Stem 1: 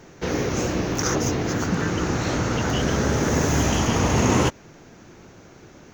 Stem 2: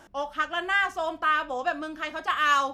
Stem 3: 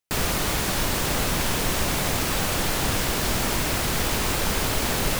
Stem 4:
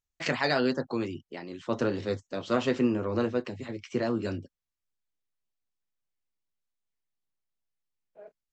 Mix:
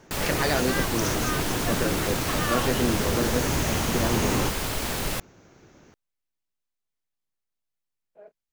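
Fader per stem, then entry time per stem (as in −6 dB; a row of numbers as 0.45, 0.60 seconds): −7.0, −9.0, −4.5, 0.0 decibels; 0.00, 0.00, 0.00, 0.00 seconds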